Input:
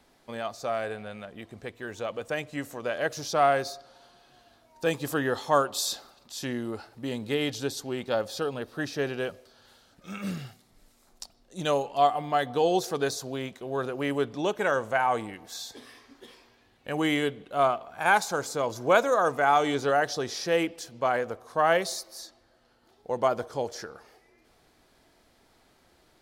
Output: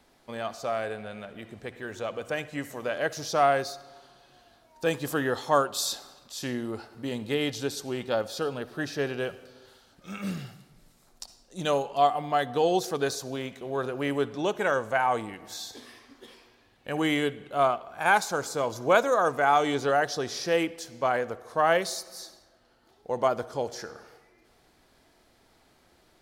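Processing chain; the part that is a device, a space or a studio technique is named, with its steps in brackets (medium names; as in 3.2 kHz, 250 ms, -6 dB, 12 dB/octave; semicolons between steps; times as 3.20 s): compressed reverb return (on a send at -10 dB: reverberation RT60 1.0 s, pre-delay 53 ms + compression, threshold -35 dBFS, peak gain reduction 17 dB)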